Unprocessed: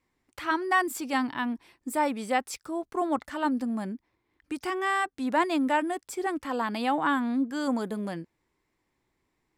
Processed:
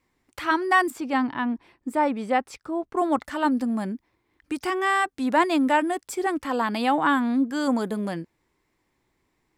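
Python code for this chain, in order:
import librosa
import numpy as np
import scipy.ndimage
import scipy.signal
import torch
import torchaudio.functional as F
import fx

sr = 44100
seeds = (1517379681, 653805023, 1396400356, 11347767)

y = fx.lowpass(x, sr, hz=1800.0, slope=6, at=(0.9, 2.97))
y = y * 10.0 ** (4.5 / 20.0)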